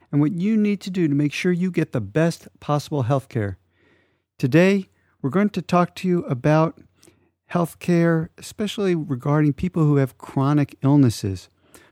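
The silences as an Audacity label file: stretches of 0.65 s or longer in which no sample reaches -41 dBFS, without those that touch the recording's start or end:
3.550000	4.400000	silence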